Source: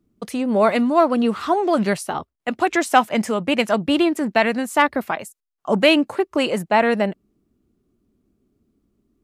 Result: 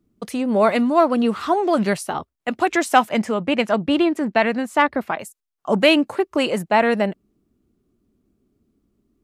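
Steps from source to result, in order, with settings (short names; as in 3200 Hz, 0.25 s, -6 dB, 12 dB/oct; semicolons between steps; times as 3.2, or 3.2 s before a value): 3.18–5.19 LPF 3600 Hz 6 dB/oct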